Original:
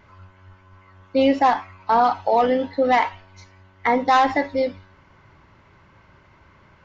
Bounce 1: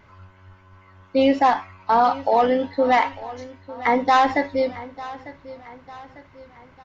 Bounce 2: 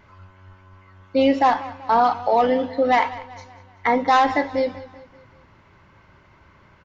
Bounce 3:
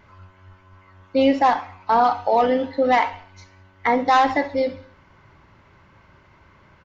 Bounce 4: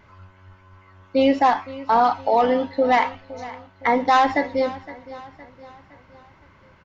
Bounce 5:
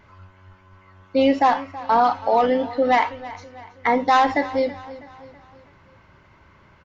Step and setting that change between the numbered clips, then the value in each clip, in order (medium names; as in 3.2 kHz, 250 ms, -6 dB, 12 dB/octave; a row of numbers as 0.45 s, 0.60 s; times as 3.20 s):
feedback delay, time: 899 ms, 192 ms, 67 ms, 514 ms, 325 ms